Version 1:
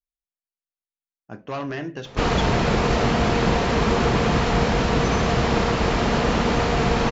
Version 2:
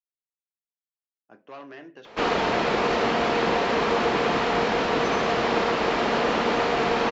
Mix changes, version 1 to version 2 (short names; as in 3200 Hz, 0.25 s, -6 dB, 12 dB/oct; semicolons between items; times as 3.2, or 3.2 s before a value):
speech -11.0 dB; master: add three-band isolator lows -20 dB, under 240 Hz, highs -12 dB, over 5100 Hz